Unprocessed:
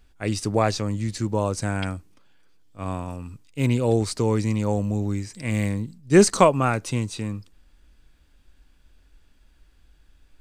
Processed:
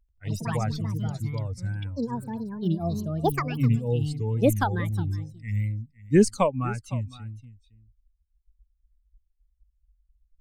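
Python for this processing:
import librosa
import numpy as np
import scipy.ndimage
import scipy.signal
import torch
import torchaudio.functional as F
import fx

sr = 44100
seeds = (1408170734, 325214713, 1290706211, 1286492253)

p1 = fx.bin_expand(x, sr, power=2.0)
p2 = fx.low_shelf(p1, sr, hz=260.0, db=11.0)
p3 = fx.wow_flutter(p2, sr, seeds[0], rate_hz=2.1, depth_cents=96.0)
p4 = p3 + fx.echo_single(p3, sr, ms=509, db=-19.0, dry=0)
p5 = fx.echo_pitch(p4, sr, ms=88, semitones=6, count=2, db_per_echo=-3.0)
y = p5 * librosa.db_to_amplitude(-6.5)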